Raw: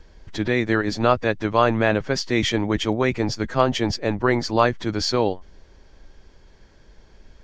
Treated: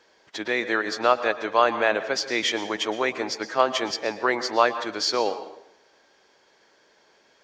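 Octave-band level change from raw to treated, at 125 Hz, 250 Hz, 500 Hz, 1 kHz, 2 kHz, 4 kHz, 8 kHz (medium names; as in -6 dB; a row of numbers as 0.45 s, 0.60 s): -23.5 dB, -9.5 dB, -2.5 dB, 0.0 dB, 0.0 dB, 0.0 dB, +0.5 dB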